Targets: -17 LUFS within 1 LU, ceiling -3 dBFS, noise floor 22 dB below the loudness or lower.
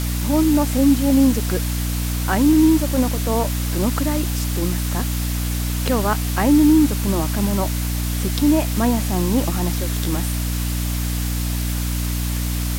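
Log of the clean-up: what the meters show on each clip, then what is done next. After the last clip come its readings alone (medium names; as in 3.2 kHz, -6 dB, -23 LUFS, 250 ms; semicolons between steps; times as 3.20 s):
hum 60 Hz; highest harmonic 300 Hz; hum level -20 dBFS; noise floor -23 dBFS; noise floor target -42 dBFS; loudness -19.5 LUFS; peak level -5.0 dBFS; loudness target -17.0 LUFS
-> de-hum 60 Hz, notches 5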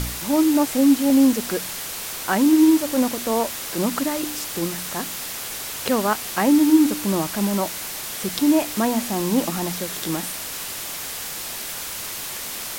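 hum not found; noise floor -32 dBFS; noise floor target -44 dBFS
-> noise print and reduce 12 dB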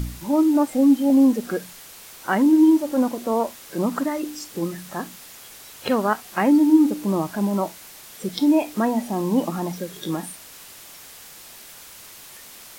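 noise floor -43 dBFS; loudness -21.0 LUFS; peak level -6.0 dBFS; loudness target -17.0 LUFS
-> trim +4 dB; peak limiter -3 dBFS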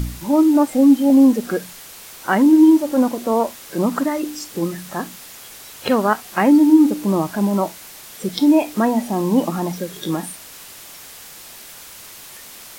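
loudness -17.0 LUFS; peak level -3.0 dBFS; noise floor -39 dBFS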